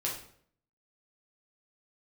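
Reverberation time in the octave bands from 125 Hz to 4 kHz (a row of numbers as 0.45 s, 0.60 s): 0.70 s, 0.70 s, 0.65 s, 0.55 s, 0.50 s, 0.45 s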